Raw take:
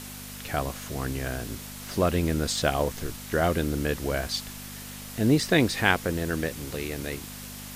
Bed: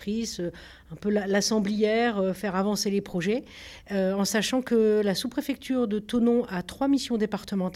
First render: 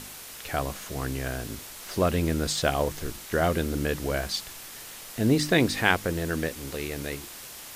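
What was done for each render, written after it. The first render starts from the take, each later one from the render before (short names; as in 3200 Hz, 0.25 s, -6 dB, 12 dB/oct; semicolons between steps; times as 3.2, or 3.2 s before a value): de-hum 50 Hz, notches 7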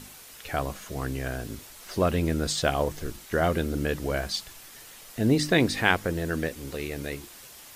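denoiser 6 dB, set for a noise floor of -43 dBFS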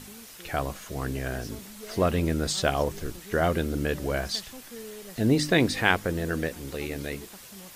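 add bed -20.5 dB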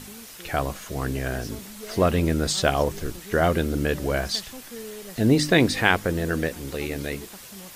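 gain +3.5 dB; limiter -2 dBFS, peak gain reduction 1.5 dB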